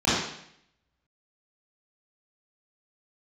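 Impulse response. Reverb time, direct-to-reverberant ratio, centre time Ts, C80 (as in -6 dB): 0.70 s, -11.0 dB, 75 ms, 2.5 dB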